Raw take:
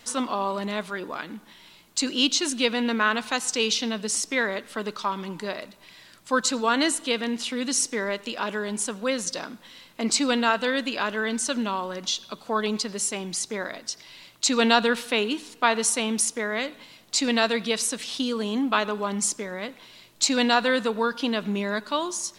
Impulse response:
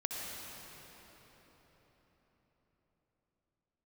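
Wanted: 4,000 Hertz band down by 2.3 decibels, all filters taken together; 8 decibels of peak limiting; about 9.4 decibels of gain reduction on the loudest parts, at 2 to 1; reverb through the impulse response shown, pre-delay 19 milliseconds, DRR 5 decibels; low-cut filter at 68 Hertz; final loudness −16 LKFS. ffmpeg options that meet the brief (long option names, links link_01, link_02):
-filter_complex "[0:a]highpass=68,equalizer=frequency=4000:width_type=o:gain=-3,acompressor=threshold=-32dB:ratio=2,alimiter=limit=-22.5dB:level=0:latency=1,asplit=2[link_01][link_02];[1:a]atrim=start_sample=2205,adelay=19[link_03];[link_02][link_03]afir=irnorm=-1:irlink=0,volume=-8dB[link_04];[link_01][link_04]amix=inputs=2:normalize=0,volume=17dB"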